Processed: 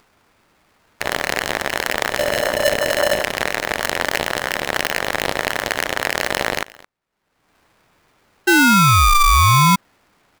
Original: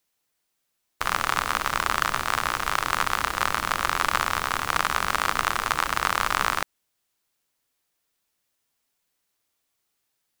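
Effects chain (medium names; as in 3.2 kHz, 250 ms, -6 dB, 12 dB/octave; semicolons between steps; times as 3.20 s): local Wiener filter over 15 samples; in parallel at +1 dB: peak limiter -13 dBFS, peak gain reduction 10 dB; 2.19–3.23 s: on the sum: tilt EQ -3.5 dB/octave; upward compressor, threshold -39 dBFS; tone controls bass -2 dB, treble -4 dB; on a send: delay 218 ms -21.5 dB; 8.47–9.76 s: on the sum: painted sound fall 400–960 Hz -12 dBFS; polarity switched at an audio rate 590 Hz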